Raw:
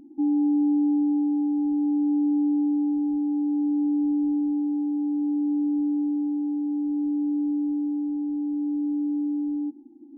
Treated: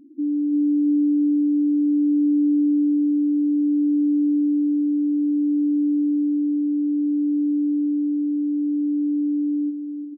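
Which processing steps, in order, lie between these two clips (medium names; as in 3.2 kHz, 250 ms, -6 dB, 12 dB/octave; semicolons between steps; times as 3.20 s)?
feedback delay 338 ms, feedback 54%, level -9 dB; spectral gate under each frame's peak -10 dB strong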